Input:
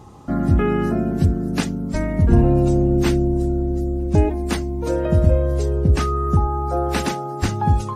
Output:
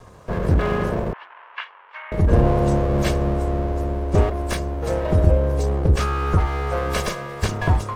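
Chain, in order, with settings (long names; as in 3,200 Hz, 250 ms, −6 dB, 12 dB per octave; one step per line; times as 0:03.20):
lower of the sound and its delayed copy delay 1.8 ms
0:01.13–0:02.12: Chebyshev band-pass filter 960–3,000 Hz, order 3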